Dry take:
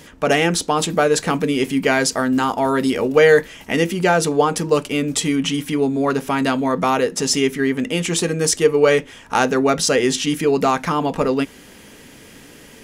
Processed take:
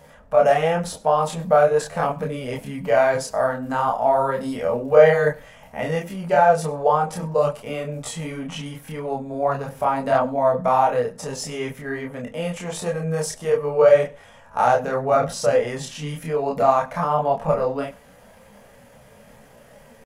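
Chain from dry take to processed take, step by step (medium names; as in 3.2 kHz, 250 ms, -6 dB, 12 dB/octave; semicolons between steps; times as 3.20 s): FFT filter 140 Hz 0 dB, 230 Hz -4 dB, 330 Hz -17 dB, 570 Hz +8 dB, 3 kHz -10 dB, 6.6 kHz -10 dB, 11 kHz -6 dB; tempo 0.64×; chorus voices 6, 0.82 Hz, delay 29 ms, depth 4.7 ms; delay 99 ms -23.5 dB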